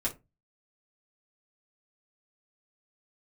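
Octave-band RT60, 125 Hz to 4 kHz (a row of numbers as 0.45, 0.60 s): 0.40, 0.30, 0.25, 0.20, 0.20, 0.15 s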